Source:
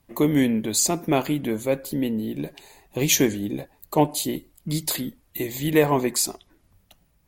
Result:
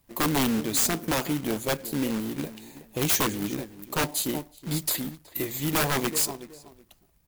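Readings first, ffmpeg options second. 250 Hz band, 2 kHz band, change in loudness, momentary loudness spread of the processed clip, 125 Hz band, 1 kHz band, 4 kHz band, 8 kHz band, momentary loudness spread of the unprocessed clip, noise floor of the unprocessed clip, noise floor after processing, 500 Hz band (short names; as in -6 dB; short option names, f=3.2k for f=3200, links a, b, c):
-5.0 dB, 0.0 dB, -3.0 dB, 12 LU, -4.0 dB, -2.5 dB, -1.5 dB, -3.0 dB, 12 LU, -64 dBFS, -63 dBFS, -7.5 dB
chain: -filter_complex "[0:a]asplit=2[a][b];[b]adelay=372,lowpass=f=1.6k:p=1,volume=-15dB,asplit=2[c][d];[d]adelay=372,lowpass=f=1.6k:p=1,volume=0.21[e];[c][e]amix=inputs=2:normalize=0[f];[a][f]amix=inputs=2:normalize=0,acrusher=bits=2:mode=log:mix=0:aa=0.000001,aeval=exprs='(mod(5.01*val(0)+1,2)-1)/5.01':c=same,highshelf=f=9.1k:g=5,volume=-3.5dB"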